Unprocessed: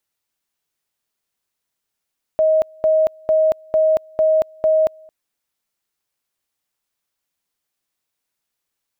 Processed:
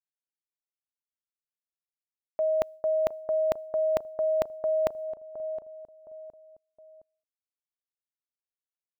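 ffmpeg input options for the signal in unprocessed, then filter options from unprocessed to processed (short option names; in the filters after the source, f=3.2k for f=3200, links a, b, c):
-f lavfi -i "aevalsrc='pow(10,(-11.5-29*gte(mod(t,0.45),0.23))/20)*sin(2*PI*630*t)':d=2.7:s=44100"
-filter_complex "[0:a]agate=range=-33dB:threshold=-32dB:ratio=3:detection=peak,asplit=2[a][b];[b]adelay=715,lowpass=f=940:p=1,volume=-17.5dB,asplit=2[c][d];[d]adelay=715,lowpass=f=940:p=1,volume=0.41,asplit=2[e][f];[f]adelay=715,lowpass=f=940:p=1,volume=0.41[g];[a][c][e][g]amix=inputs=4:normalize=0,areverse,acompressor=threshold=-25dB:ratio=6,areverse"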